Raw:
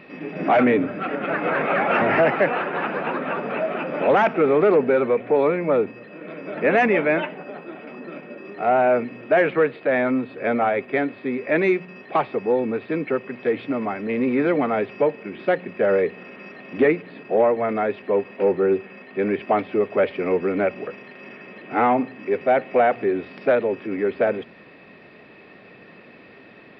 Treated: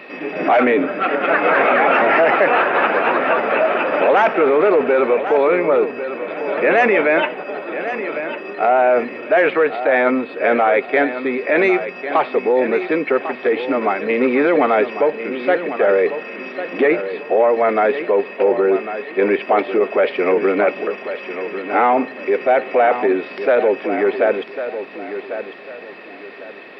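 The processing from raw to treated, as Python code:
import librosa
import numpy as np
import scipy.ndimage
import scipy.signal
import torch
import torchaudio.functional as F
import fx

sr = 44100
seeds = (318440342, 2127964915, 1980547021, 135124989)

p1 = scipy.signal.sosfilt(scipy.signal.butter(2, 370.0, 'highpass', fs=sr, output='sos'), x)
p2 = fx.over_compress(p1, sr, threshold_db=-23.0, ratio=-0.5)
p3 = p1 + (p2 * 10.0 ** (-2.5 / 20.0))
p4 = fx.echo_feedback(p3, sr, ms=1099, feedback_pct=30, wet_db=-10.5)
y = p4 * 10.0 ** (3.0 / 20.0)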